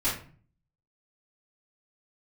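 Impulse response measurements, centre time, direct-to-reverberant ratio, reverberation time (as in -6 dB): 35 ms, -11.0 dB, 0.45 s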